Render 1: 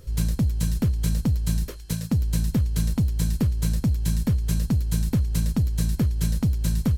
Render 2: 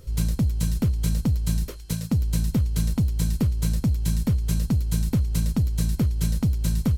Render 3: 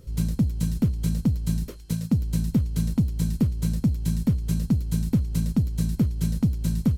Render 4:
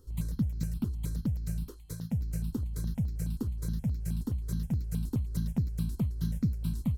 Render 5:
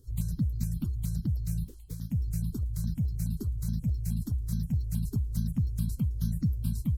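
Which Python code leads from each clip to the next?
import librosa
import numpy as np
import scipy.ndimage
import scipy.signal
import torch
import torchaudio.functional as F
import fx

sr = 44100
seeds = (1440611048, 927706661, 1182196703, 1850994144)

y1 = fx.notch(x, sr, hz=1700.0, q=14.0)
y2 = fx.peak_eq(y1, sr, hz=210.0, db=8.0, octaves=1.8)
y2 = F.gain(torch.from_numpy(y2), -5.0).numpy()
y3 = fx.phaser_held(y2, sr, hz=9.5, low_hz=610.0, high_hz=3000.0)
y3 = F.gain(torch.from_numpy(y3), -6.0).numpy()
y4 = fx.spec_quant(y3, sr, step_db=30)
y4 = fx.bass_treble(y4, sr, bass_db=12, treble_db=9)
y4 = F.gain(torch.from_numpy(y4), -8.5).numpy()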